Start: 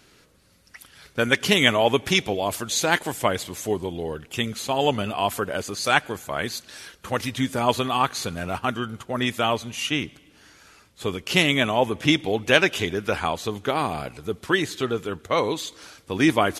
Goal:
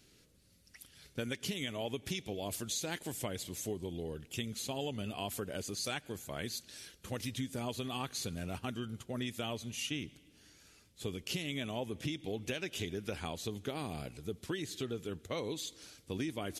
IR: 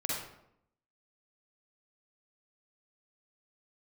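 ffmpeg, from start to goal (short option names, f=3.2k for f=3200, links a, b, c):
-af "equalizer=f=1.1k:w=0.69:g=-12.5,alimiter=limit=-13.5dB:level=0:latency=1:release=285,acompressor=threshold=-28dB:ratio=6,volume=-6dB"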